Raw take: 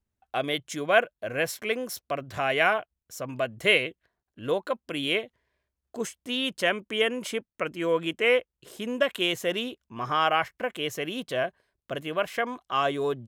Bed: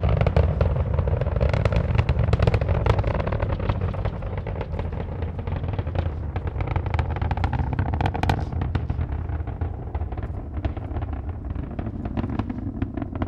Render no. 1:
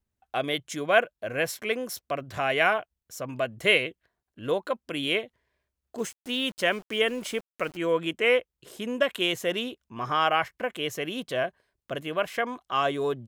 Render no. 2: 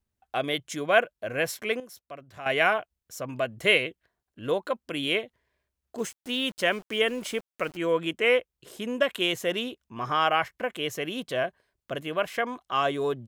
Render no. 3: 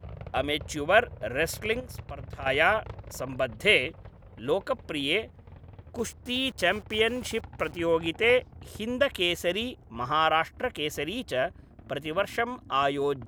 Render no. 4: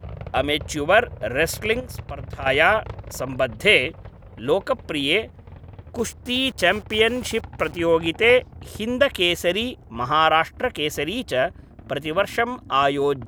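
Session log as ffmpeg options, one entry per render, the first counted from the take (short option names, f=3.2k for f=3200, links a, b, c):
-filter_complex "[0:a]asettb=1/sr,asplit=3[a][b][c];[a]atrim=end=5.984[d];[b]atrim=start=5.98:end=7.77,asetpts=PTS-STARTPTS,afade=t=in:d=0.004:c=qsin,afade=t=out:st=1.786:d=0.004:c=qsin,aeval=exprs='val(0)*gte(abs(val(0)),0.00668)':c=same[e];[c]atrim=start=7.766[f];[d][e]acrossfade=d=0.004:c1=hsin:c2=qsin[g];[g][f]acrossfade=d=0.004:c1=qsin:c2=hsin"
-filter_complex "[0:a]asplit=3[a][b][c];[a]atrim=end=1.802[d];[b]atrim=start=1.798:end=2.462,asetpts=PTS-STARTPTS,volume=-11.5dB[e];[c]atrim=start=2.458[f];[d][e]acrossfade=d=0.004:c1=hsin:c2=hsin[g];[g][f]acrossfade=d=0.004:c1=hsin:c2=hsin"
-filter_complex "[1:a]volume=-21dB[a];[0:a][a]amix=inputs=2:normalize=0"
-af "volume=6.5dB,alimiter=limit=-3dB:level=0:latency=1"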